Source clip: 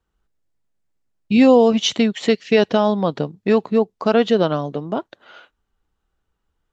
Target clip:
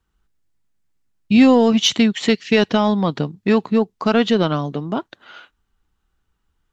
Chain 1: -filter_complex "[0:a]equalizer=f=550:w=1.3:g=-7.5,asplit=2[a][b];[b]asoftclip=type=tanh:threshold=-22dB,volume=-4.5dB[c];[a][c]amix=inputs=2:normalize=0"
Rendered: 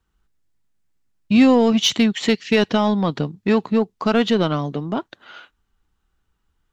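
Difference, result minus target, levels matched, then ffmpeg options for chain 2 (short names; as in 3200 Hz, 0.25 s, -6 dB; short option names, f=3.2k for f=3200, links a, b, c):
soft clip: distortion +9 dB
-filter_complex "[0:a]equalizer=f=550:w=1.3:g=-7.5,asplit=2[a][b];[b]asoftclip=type=tanh:threshold=-12dB,volume=-4.5dB[c];[a][c]amix=inputs=2:normalize=0"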